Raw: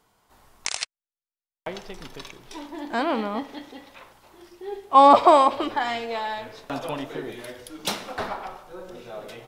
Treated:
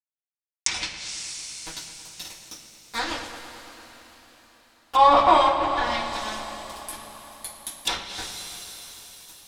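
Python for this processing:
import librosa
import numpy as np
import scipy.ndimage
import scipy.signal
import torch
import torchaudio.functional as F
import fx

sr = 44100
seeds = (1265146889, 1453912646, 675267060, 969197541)

p1 = np.diff(x, prepend=0.0)
p2 = np.where(np.abs(p1) >= 10.0 ** (-36.0 / 20.0), p1, 0.0)
p3 = fx.low_shelf(p2, sr, hz=270.0, db=11.0)
p4 = p3 + fx.echo_filtered(p3, sr, ms=111, feedback_pct=76, hz=4100.0, wet_db=-12.5, dry=0)
p5 = fx.rev_double_slope(p4, sr, seeds[0], early_s=0.27, late_s=4.8, knee_db=-20, drr_db=-8.5)
p6 = fx.env_lowpass_down(p5, sr, base_hz=2600.0, full_db=-25.0)
y = p6 * 10.0 ** (6.5 / 20.0)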